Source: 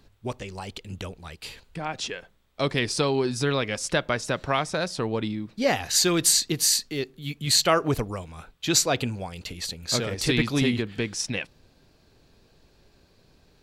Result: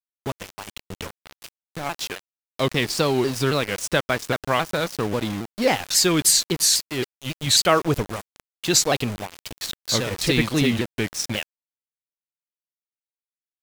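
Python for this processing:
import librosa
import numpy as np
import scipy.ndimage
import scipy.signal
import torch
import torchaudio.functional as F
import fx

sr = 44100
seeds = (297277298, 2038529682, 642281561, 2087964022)

y = np.where(np.abs(x) >= 10.0 ** (-31.0 / 20.0), x, 0.0)
y = fx.vibrato_shape(y, sr, shape='saw_down', rate_hz=3.7, depth_cents=160.0)
y = y * librosa.db_to_amplitude(3.0)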